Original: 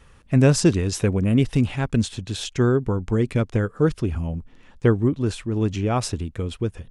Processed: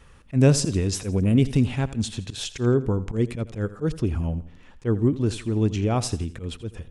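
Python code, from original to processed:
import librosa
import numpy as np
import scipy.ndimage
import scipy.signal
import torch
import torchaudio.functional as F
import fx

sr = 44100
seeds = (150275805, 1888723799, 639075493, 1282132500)

y = fx.dynamic_eq(x, sr, hz=1400.0, q=0.77, threshold_db=-36.0, ratio=4.0, max_db=-5)
y = fx.auto_swell(y, sr, attack_ms=101.0)
y = fx.echo_feedback(y, sr, ms=83, feedback_pct=40, wet_db=-16.5)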